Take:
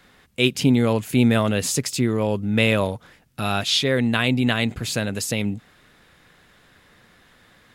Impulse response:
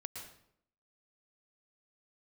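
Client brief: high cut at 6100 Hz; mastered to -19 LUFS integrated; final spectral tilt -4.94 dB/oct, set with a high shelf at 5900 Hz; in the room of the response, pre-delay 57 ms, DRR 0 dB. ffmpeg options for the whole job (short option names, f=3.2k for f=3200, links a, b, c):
-filter_complex "[0:a]lowpass=6.1k,highshelf=f=5.9k:g=-6.5,asplit=2[a][b];[1:a]atrim=start_sample=2205,adelay=57[c];[b][c]afir=irnorm=-1:irlink=0,volume=2.5dB[d];[a][d]amix=inputs=2:normalize=0"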